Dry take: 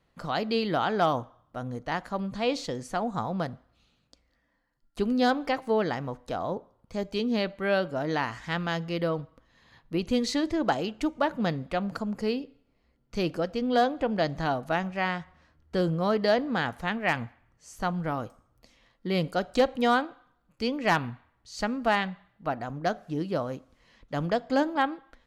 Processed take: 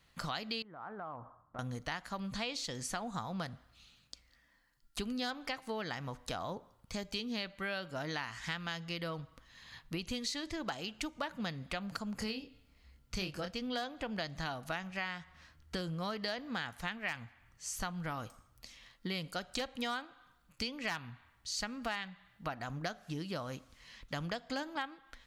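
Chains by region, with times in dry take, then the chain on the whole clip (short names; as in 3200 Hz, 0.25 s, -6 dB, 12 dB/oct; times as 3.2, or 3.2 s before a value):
0.62–1.59 LPF 1300 Hz 24 dB/oct + tilt +1.5 dB/oct + compressor, threshold -40 dBFS
12.18–13.51 bell 65 Hz +9 dB 1.5 oct + doubler 27 ms -5.5 dB
whole clip: passive tone stack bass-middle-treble 5-5-5; compressor 5:1, threshold -52 dBFS; gain +15.5 dB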